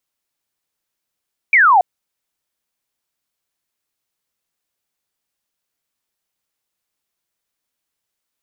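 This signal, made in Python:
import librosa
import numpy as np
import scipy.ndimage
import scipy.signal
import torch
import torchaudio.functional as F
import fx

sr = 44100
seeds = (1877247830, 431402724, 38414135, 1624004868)

y = fx.laser_zap(sr, level_db=-7.5, start_hz=2400.0, end_hz=690.0, length_s=0.28, wave='sine')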